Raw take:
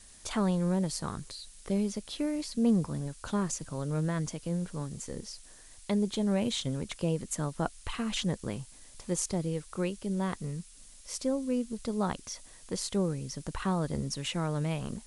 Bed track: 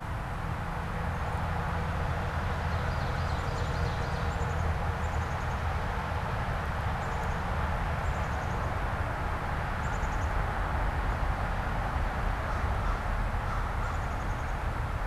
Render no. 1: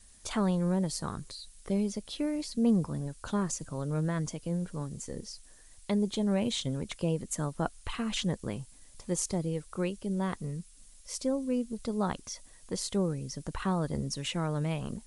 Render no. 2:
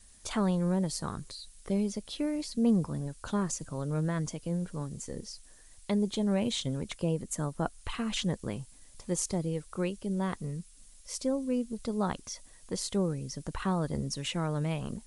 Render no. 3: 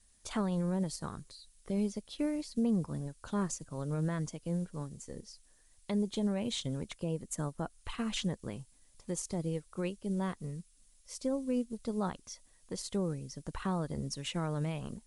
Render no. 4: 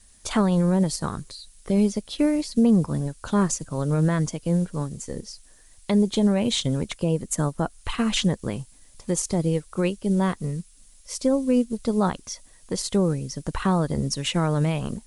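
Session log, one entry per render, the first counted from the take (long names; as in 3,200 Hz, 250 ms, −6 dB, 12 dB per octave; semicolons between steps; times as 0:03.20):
broadband denoise 6 dB, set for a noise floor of −54 dBFS
0:06.95–0:07.79: parametric band 3,200 Hz −2.5 dB 2.1 octaves
brickwall limiter −23 dBFS, peak gain reduction 7.5 dB; expander for the loud parts 1.5 to 1, over −46 dBFS
level +12 dB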